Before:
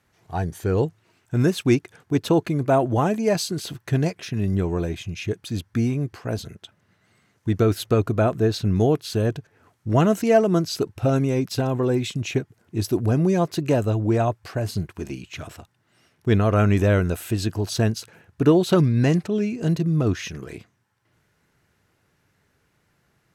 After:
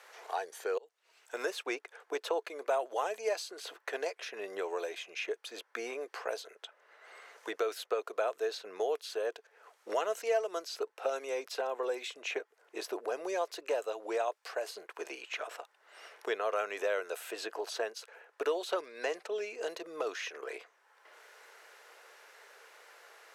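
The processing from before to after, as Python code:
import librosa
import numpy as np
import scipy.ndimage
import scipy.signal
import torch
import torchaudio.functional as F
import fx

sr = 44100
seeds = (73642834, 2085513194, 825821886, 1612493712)

y = fx.edit(x, sr, fx.fade_in_span(start_s=0.78, length_s=0.7), tone=tone)
y = scipy.signal.sosfilt(scipy.signal.ellip(4, 1.0, 80, 460.0, 'highpass', fs=sr, output='sos'), y)
y = fx.high_shelf(y, sr, hz=11000.0, db=-7.0)
y = fx.band_squash(y, sr, depth_pct=70)
y = y * 10.0 ** (-7.0 / 20.0)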